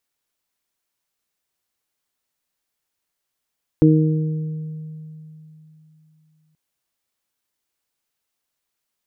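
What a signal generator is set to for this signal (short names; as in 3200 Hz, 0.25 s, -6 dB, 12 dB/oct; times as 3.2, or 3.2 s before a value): additive tone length 2.73 s, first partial 156 Hz, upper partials 2.5/-7 dB, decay 3.34 s, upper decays 1.14/1.74 s, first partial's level -12 dB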